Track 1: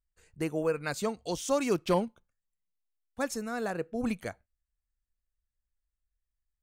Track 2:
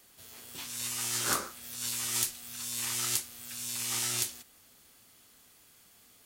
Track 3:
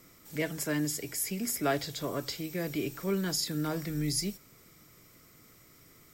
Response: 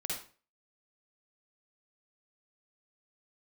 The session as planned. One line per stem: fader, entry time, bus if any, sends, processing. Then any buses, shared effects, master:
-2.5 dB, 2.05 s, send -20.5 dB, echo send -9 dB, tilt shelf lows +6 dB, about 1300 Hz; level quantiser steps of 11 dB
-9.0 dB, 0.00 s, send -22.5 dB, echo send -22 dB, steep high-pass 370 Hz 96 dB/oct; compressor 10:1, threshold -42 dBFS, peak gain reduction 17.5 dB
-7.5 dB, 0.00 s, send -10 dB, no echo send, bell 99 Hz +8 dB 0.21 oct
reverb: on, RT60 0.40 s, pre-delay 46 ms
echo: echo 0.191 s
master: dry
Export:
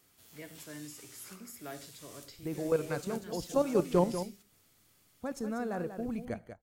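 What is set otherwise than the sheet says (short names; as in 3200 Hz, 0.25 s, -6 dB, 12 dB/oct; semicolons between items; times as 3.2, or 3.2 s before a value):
stem 2: missing steep high-pass 370 Hz 96 dB/oct; stem 3 -7.5 dB -> -17.5 dB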